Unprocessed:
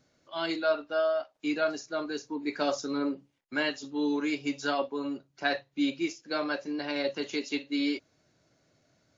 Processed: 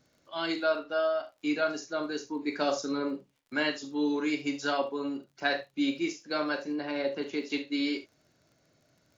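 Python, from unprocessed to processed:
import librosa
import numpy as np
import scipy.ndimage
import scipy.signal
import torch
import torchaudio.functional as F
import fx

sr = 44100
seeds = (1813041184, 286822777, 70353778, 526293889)

y = fx.high_shelf(x, sr, hz=3500.0, db=-12.0, at=(6.72, 7.5))
y = fx.dmg_crackle(y, sr, seeds[0], per_s=32.0, level_db=-52.0)
y = fx.room_early_taps(y, sr, ms=(40, 72), db=(-11.0, -14.5))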